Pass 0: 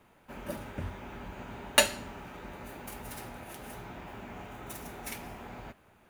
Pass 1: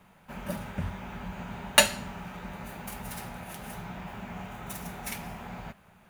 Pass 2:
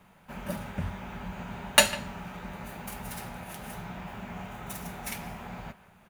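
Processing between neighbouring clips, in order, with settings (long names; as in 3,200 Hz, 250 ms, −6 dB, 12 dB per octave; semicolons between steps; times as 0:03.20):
drawn EQ curve 130 Hz 0 dB, 180 Hz +8 dB, 290 Hz −8 dB, 740 Hz 0 dB; level +3.5 dB
far-end echo of a speakerphone 150 ms, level −16 dB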